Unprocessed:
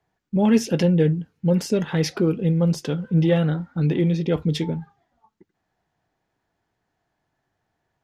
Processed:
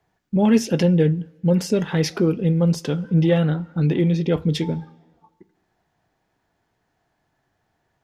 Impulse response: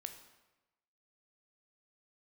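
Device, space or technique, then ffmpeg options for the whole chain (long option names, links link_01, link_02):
ducked reverb: -filter_complex "[0:a]asplit=3[link_01][link_02][link_03];[1:a]atrim=start_sample=2205[link_04];[link_02][link_04]afir=irnorm=-1:irlink=0[link_05];[link_03]apad=whole_len=354481[link_06];[link_05][link_06]sidechaincompress=threshold=-29dB:ratio=4:attack=5.1:release=962,volume=1dB[link_07];[link_01][link_07]amix=inputs=2:normalize=0"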